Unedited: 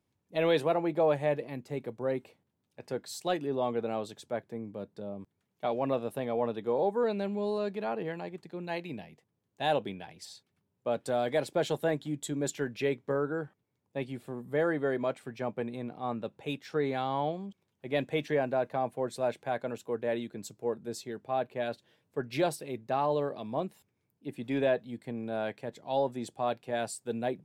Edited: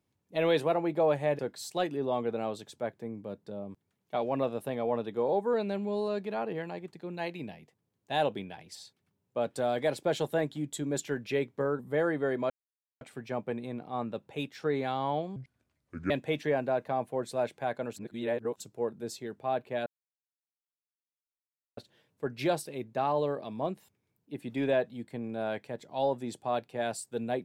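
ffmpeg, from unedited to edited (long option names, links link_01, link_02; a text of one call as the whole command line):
ffmpeg -i in.wav -filter_complex "[0:a]asplit=9[link_01][link_02][link_03][link_04][link_05][link_06][link_07][link_08][link_09];[link_01]atrim=end=1.392[link_10];[link_02]atrim=start=2.888:end=13.292[link_11];[link_03]atrim=start=14.398:end=15.11,asetpts=PTS-STARTPTS,afade=type=out:start_time=0.708:duration=0.004:curve=hsin,apad=pad_dur=0.51[link_12];[link_04]atrim=start=15.11:end=17.464,asetpts=PTS-STARTPTS,afade=type=in:duration=0.004:curve=hsin[link_13];[link_05]atrim=start=17.46:end=17.95,asetpts=PTS-STARTPTS,asetrate=29106,aresample=44100[link_14];[link_06]atrim=start=17.946:end=19.812[link_15];[link_07]atrim=start=19.808:end=20.452,asetpts=PTS-STARTPTS,areverse[link_16];[link_08]atrim=start=20.448:end=21.71,asetpts=PTS-STARTPTS,afade=type=out:start_time=1.258:duration=0.004:curve=hsin,apad=pad_dur=1.91[link_17];[link_09]atrim=start=21.71,asetpts=PTS-STARTPTS,afade=type=in:duration=0.004:curve=hsin[link_18];[link_10][link_11]acrossfade=duration=0.004:curve1=hsin:curve2=hsin[link_19];[link_12][link_13]concat=n=2:v=0:a=1[link_20];[link_19][link_20]acrossfade=duration=0.004:curve1=hsin:curve2=hsin[link_21];[link_21][link_14]acrossfade=duration=0.004:curve1=hsin:curve2=hsin[link_22];[link_22][link_15]acrossfade=duration=0.004:curve1=hsin:curve2=hsin[link_23];[link_23][link_16]acrossfade=duration=0.004:curve1=hsin:curve2=hsin[link_24];[link_17][link_18]concat=n=2:v=0:a=1[link_25];[link_24][link_25]acrossfade=duration=0.004:curve1=hsin:curve2=hsin" out.wav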